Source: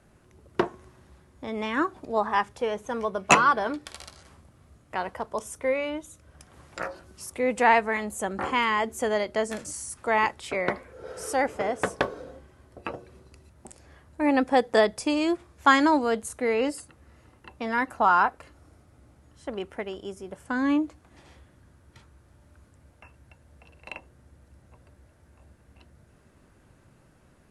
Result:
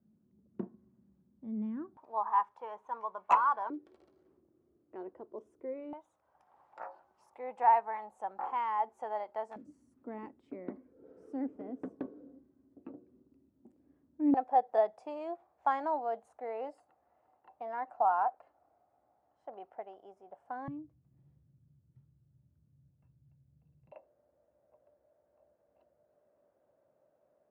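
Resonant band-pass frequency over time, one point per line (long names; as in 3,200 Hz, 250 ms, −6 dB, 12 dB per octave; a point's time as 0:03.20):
resonant band-pass, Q 6.1
210 Hz
from 0:01.97 950 Hz
from 0:03.70 350 Hz
from 0:05.93 840 Hz
from 0:09.56 270 Hz
from 0:14.34 740 Hz
from 0:20.68 140 Hz
from 0:23.92 600 Hz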